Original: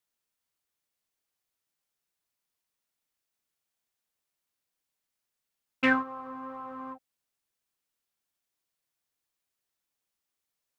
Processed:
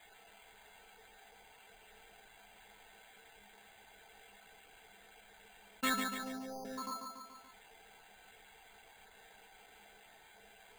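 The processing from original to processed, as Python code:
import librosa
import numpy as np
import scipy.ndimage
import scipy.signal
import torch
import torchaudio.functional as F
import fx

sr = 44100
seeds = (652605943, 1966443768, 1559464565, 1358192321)

p1 = fx.spec_dropout(x, sr, seeds[0], share_pct=31)
p2 = fx.cheby1_lowpass(p1, sr, hz=820.0, order=6, at=(5.96, 6.65))
p3 = fx.stiff_resonator(p2, sr, f0_hz=200.0, decay_s=0.35, stiffness=0.03)
p4 = p3 + fx.echo_feedback(p3, sr, ms=143, feedback_pct=35, wet_db=-10, dry=0)
p5 = np.repeat(p4[::8], 8)[:len(p4)]
p6 = fx.env_flatten(p5, sr, amount_pct=50)
y = p6 * 10.0 ** (10.5 / 20.0)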